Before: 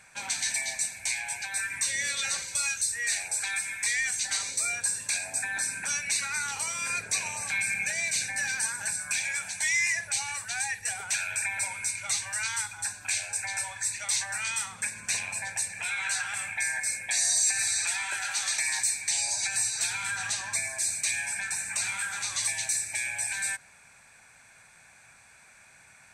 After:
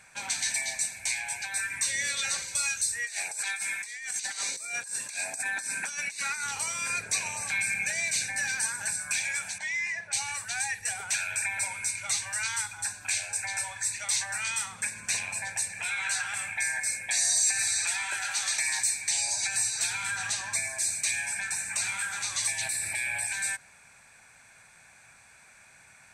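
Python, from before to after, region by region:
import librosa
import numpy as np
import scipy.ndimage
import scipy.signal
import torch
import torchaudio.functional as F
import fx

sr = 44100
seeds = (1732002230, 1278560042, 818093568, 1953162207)

y = fx.chain(x, sr, fx.highpass(hz=190.0, slope=12),
    fx.over_compress(threshold_db=-33.0, ratio=-0.5), at=(3.05, 6.44))
y = fx.chain(y, sr, fx.highpass(hz=150.0, slope=12),
    fx.spacing_loss(db_at_10k=21), at=(9.58, 10.13))
y = fx.chain(y, sr, fx.peak_eq(hz=6300.0, db=-13.5, octaves=0.47),
    fx.env_flatten(amount_pct=70), at=(22.61, 23.26))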